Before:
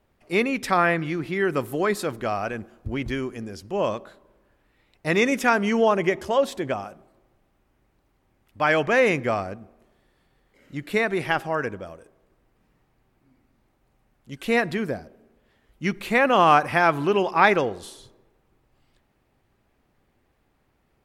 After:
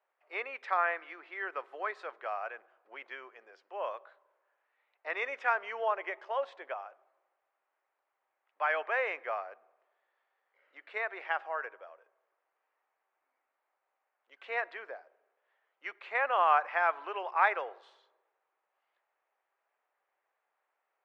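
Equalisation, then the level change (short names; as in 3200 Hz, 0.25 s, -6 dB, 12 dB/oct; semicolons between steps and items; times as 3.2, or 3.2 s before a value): Bessel high-pass 870 Hz, order 6; LPF 1900 Hz 12 dB/oct; air absorption 58 m; -5.0 dB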